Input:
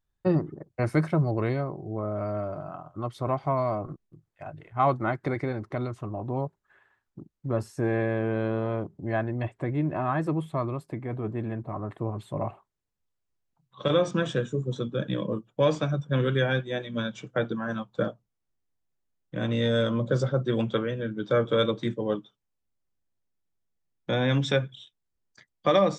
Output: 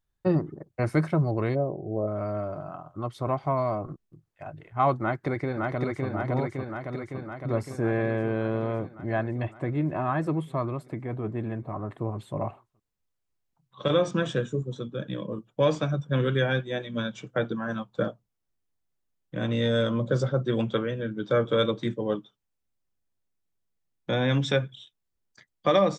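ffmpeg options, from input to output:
-filter_complex "[0:a]asplit=3[a][b][c];[a]afade=t=out:st=1.54:d=0.02[d];[b]lowpass=f=590:t=q:w=2.1,afade=t=in:st=1.54:d=0.02,afade=t=out:st=2.06:d=0.02[e];[c]afade=t=in:st=2.06:d=0.02[f];[d][e][f]amix=inputs=3:normalize=0,asplit=2[g][h];[h]afade=t=in:st=5:d=0.01,afade=t=out:st=6.07:d=0.01,aecho=0:1:560|1120|1680|2240|2800|3360|3920|4480|5040|5600|6160|6720:0.794328|0.55603|0.389221|0.272455|0.190718|0.133503|0.0934519|0.0654163|0.0457914|0.032054|0.0224378|0.0157065[i];[g][i]amix=inputs=2:normalize=0,asplit=3[j][k][l];[j]atrim=end=14.632[m];[k]atrim=start=14.628:end=15.382,asetpts=PTS-STARTPTS,volume=-4dB[n];[l]atrim=start=15.378[o];[m][n]acrossfade=d=0.004:c1=hsin:c2=hsin[p];[p][o]acrossfade=d=0.004:c1=hsin:c2=hsin"

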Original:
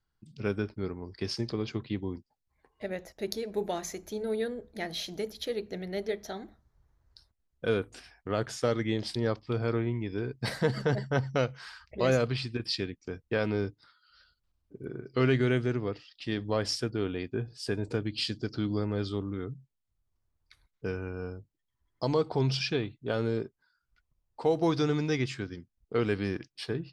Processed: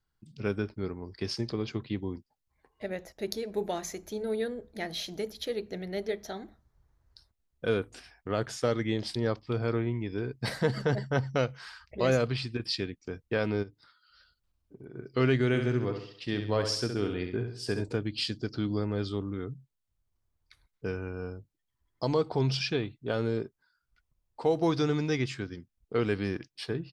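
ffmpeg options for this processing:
-filter_complex "[0:a]asplit=3[a][b][c];[a]afade=t=out:st=13.62:d=0.02[d];[b]acompressor=threshold=-44dB:ratio=3:attack=3.2:release=140:knee=1:detection=peak,afade=t=in:st=13.62:d=0.02,afade=t=out:st=14.95:d=0.02[e];[c]afade=t=in:st=14.95:d=0.02[f];[d][e][f]amix=inputs=3:normalize=0,asplit=3[g][h][i];[g]afade=t=out:st=15.53:d=0.02[j];[h]aecho=1:1:67|134|201|268|335:0.447|0.201|0.0905|0.0407|0.0183,afade=t=in:st=15.53:d=0.02,afade=t=out:st=17.82:d=0.02[k];[i]afade=t=in:st=17.82:d=0.02[l];[j][k][l]amix=inputs=3:normalize=0"

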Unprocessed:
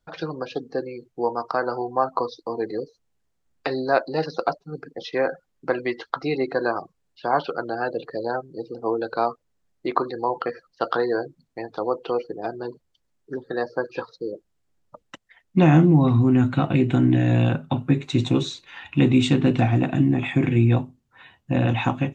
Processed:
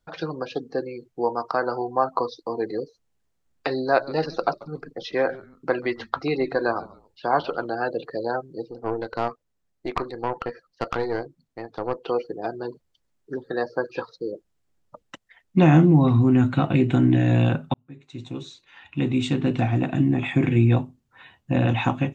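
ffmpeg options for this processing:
-filter_complex "[0:a]asettb=1/sr,asplit=3[a][b][c];[a]atrim=end=3.854[d];[b]atrim=start=3.85:end=7.67,asetpts=PTS-STARTPTS,afade=t=in:d=0.004:c=qsin,afade=t=out:st=3.816:d=0.004:c=qsin,asplit=3[e][f][g];[f]adelay=139,afreqshift=-140,volume=-20dB[h];[g]adelay=278,afreqshift=-280,volume=-30.2dB[i];[e][h][i]amix=inputs=3:normalize=0,atrim=end_sample=168462[j];[c]atrim=start=7.666[k];[d][j]acrossfade=d=0.004:c1=hsin:c2=qsin[l];[l][k]acrossfade=d=0.004:c1=qsin:c2=hsin,asettb=1/sr,asplit=3[m][n][o];[m]atrim=end=8.654[p];[n]atrim=start=8.65:end=12.06,asetpts=PTS-STARTPTS,afade=t=in:d=0.004:c=qsin,afade=t=out:st=3.406:d=0.004:c=qsin,aeval=exprs='(tanh(5.62*val(0)+0.7)-tanh(0.7))/5.62':c=same[q];[o]atrim=start=12.056[r];[p][q]acrossfade=d=0.004:c1=hsin:c2=qsin[s];[s][r]acrossfade=d=0.004:c1=qsin:c2=hsin,asplit=2[t][u];[t]atrim=end=17.74,asetpts=PTS-STARTPTS,afade=t=out:st=17.736:d=0.004:c=hsin[v];[u]atrim=start=17.74,asetpts=PTS-STARTPTS,afade=t=in:d=2.66[w];[v][w]concat=n=2:v=0:a=1"

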